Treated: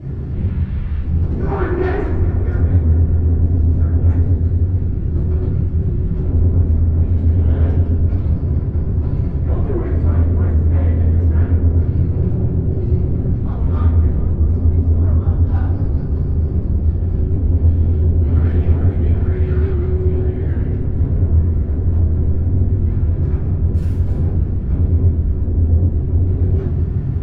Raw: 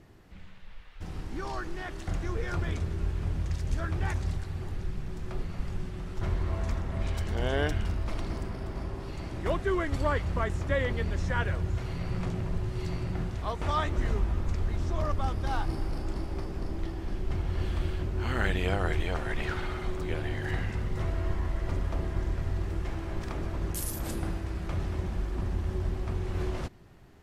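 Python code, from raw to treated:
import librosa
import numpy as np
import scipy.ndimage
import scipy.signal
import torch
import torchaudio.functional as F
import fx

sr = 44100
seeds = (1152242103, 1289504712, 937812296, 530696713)

p1 = fx.tracing_dist(x, sr, depth_ms=0.073)
p2 = scipy.signal.sosfilt(scipy.signal.butter(4, 64.0, 'highpass', fs=sr, output='sos'), p1)
p3 = fx.riaa(p2, sr, side='playback')
p4 = fx.spec_box(p3, sr, start_s=1.47, length_s=0.58, low_hz=240.0, high_hz=2600.0, gain_db=12)
p5 = fx.low_shelf(p4, sr, hz=280.0, db=10.0)
p6 = fx.over_compress(p5, sr, threshold_db=-26.0, ratio=-0.5)
p7 = p5 + (p6 * 10.0 ** (-0.5 / 20.0))
p8 = 10.0 ** (-14.5 / 20.0) * np.tanh(p7 / 10.0 ** (-14.5 / 20.0))
p9 = p8 + fx.echo_filtered(p8, sr, ms=211, feedback_pct=83, hz=4000.0, wet_db=-15.0, dry=0)
p10 = fx.room_shoebox(p9, sr, seeds[0], volume_m3=160.0, walls='mixed', distance_m=3.1)
p11 = fx.record_warp(p10, sr, rpm=78.0, depth_cents=100.0)
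y = p11 * 10.0 ** (-11.5 / 20.0)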